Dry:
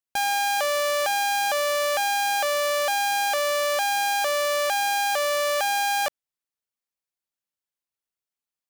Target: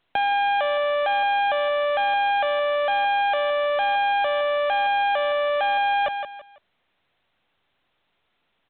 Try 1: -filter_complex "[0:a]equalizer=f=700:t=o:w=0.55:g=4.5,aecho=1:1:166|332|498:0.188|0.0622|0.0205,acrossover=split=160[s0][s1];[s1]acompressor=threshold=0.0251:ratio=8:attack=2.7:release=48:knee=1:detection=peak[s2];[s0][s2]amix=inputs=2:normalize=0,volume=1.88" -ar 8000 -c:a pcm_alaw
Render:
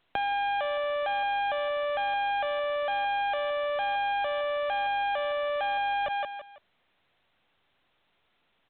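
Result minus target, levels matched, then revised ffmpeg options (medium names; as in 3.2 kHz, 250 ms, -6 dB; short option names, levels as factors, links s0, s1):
compression: peak gain reduction +7 dB
-filter_complex "[0:a]equalizer=f=700:t=o:w=0.55:g=4.5,aecho=1:1:166|332|498:0.188|0.0622|0.0205,acrossover=split=160[s0][s1];[s1]acompressor=threshold=0.0631:ratio=8:attack=2.7:release=48:knee=1:detection=peak[s2];[s0][s2]amix=inputs=2:normalize=0,volume=1.88" -ar 8000 -c:a pcm_alaw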